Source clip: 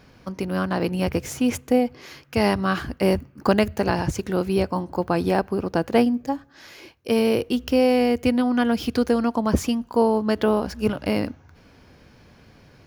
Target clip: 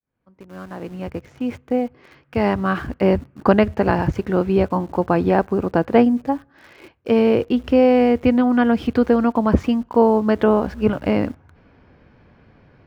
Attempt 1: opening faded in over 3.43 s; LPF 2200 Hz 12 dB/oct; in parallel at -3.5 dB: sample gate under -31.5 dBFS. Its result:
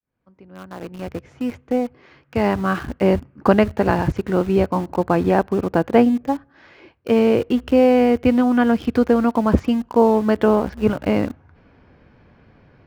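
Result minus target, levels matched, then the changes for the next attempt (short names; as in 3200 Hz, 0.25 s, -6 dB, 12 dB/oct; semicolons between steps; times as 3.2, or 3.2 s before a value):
sample gate: distortion +9 dB
change: sample gate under -40.5 dBFS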